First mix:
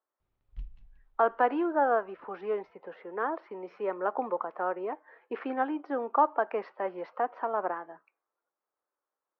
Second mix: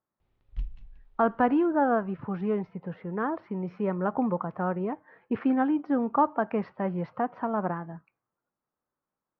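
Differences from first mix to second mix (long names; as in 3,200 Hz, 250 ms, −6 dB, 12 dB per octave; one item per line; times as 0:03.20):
speech: remove high-pass filter 370 Hz 24 dB per octave
background +7.5 dB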